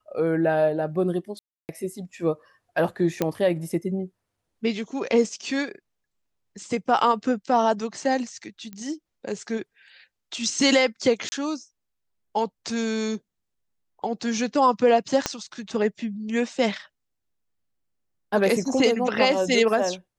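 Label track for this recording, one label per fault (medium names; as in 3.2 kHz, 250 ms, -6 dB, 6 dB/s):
1.390000	1.690000	dropout 299 ms
3.220000	3.220000	pop -9 dBFS
8.730000	8.730000	pop -24 dBFS
11.290000	11.320000	dropout 30 ms
15.260000	15.260000	pop -8 dBFS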